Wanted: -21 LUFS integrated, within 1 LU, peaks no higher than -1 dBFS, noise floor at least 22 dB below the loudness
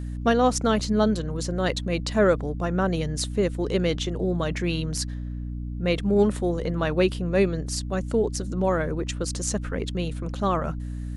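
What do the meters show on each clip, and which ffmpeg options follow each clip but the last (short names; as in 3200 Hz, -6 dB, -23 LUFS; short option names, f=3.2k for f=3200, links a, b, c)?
hum 60 Hz; harmonics up to 300 Hz; hum level -29 dBFS; loudness -25.5 LUFS; peak -8.5 dBFS; loudness target -21.0 LUFS
-> -af "bandreject=f=60:t=h:w=4,bandreject=f=120:t=h:w=4,bandreject=f=180:t=h:w=4,bandreject=f=240:t=h:w=4,bandreject=f=300:t=h:w=4"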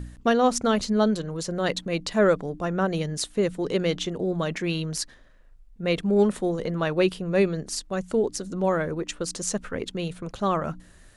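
hum none; loudness -26.0 LUFS; peak -9.5 dBFS; loudness target -21.0 LUFS
-> -af "volume=5dB"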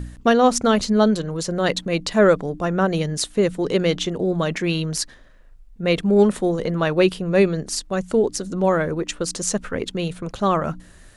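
loudness -21.0 LUFS; peak -4.5 dBFS; noise floor -47 dBFS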